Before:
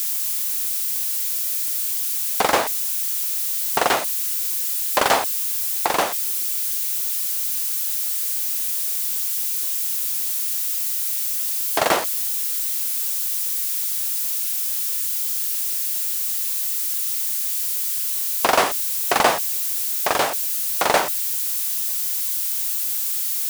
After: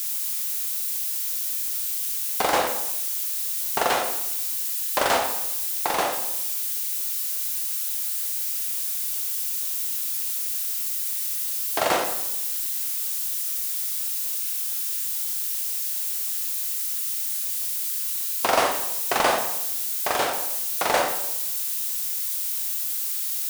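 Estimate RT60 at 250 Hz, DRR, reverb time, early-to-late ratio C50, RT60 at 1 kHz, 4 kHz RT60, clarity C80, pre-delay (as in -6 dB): 1.0 s, 3.0 dB, 0.85 s, 6.0 dB, 0.85 s, 0.70 s, 9.0 dB, 19 ms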